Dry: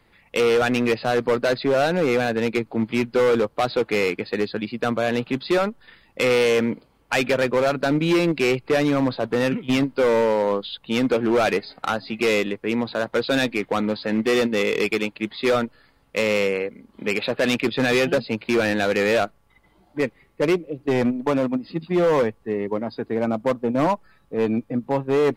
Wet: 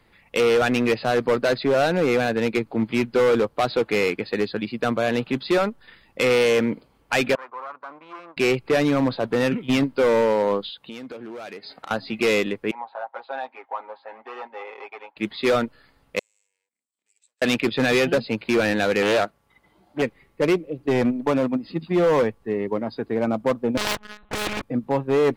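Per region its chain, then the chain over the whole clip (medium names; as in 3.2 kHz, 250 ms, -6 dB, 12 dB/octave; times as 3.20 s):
7.35–8.37 s: partial rectifier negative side -12 dB + band-pass filter 1.1 kHz, Q 5.3
10.70–11.91 s: high-pass 170 Hz 6 dB/octave + compression 12:1, threshold -33 dBFS
12.71–15.17 s: ladder band-pass 880 Hz, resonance 75% + comb 7.5 ms, depth 96%
16.19–17.42 s: partial rectifier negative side -12 dB + compression 8:1, threshold -37 dBFS + band-pass filter 7.9 kHz, Q 11
19.02–20.02 s: high-pass 110 Hz 6 dB/octave + loudspeaker Doppler distortion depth 0.28 ms
23.77–24.63 s: monotone LPC vocoder at 8 kHz 210 Hz + waveshaping leveller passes 3 + spectrum-flattening compressor 4:1
whole clip: none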